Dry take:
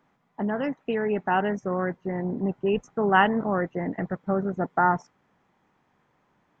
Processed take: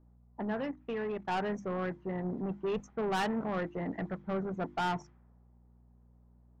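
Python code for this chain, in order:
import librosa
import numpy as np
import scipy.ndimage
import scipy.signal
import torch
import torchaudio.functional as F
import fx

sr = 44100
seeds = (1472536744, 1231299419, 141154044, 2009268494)

y = 10.0 ** (-23.0 / 20.0) * np.tanh(x / 10.0 ** (-23.0 / 20.0))
y = fx.env_lowpass(y, sr, base_hz=590.0, full_db=-27.5)
y = fx.level_steps(y, sr, step_db=15, at=(0.63, 1.29))
y = fx.add_hum(y, sr, base_hz=60, snr_db=25)
y = fx.hum_notches(y, sr, base_hz=50, count=7)
y = F.gain(torch.from_numpy(y), -4.5).numpy()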